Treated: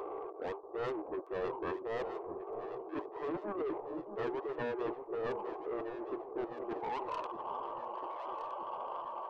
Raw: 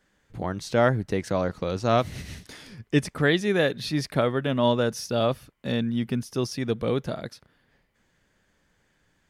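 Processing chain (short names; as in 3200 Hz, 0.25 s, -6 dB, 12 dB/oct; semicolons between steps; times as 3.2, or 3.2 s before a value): delta modulation 64 kbps, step -33.5 dBFS; high-pass sweep 550 Hz -> 1100 Hz, 6.37–7.15; dynamic EQ 1200 Hz, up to +6 dB, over -38 dBFS, Q 2.2; reverse; compressor 10:1, threshold -30 dBFS, peak gain reduction 19.5 dB; reverse; FFT band-pass 310–1600 Hz; soft clip -35.5 dBFS, distortion -8 dB; formant shift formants -5 st; on a send: echo with dull and thin repeats by turns 0.633 s, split 980 Hz, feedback 71%, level -8 dB; on the sum: gain +2.5 dB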